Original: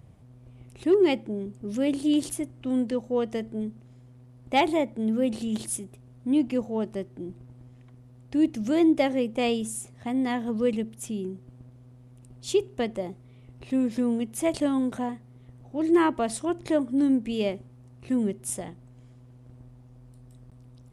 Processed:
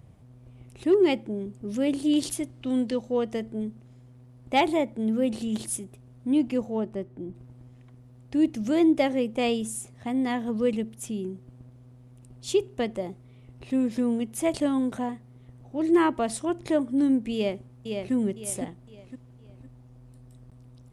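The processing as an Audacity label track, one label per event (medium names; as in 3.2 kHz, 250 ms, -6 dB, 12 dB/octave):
2.160000	3.170000	peaking EQ 4.2 kHz +7 dB 1.3 oct
6.800000	7.350000	treble shelf 2.7 kHz -10.5 dB
17.340000	18.130000	echo throw 510 ms, feedback 35%, level -5 dB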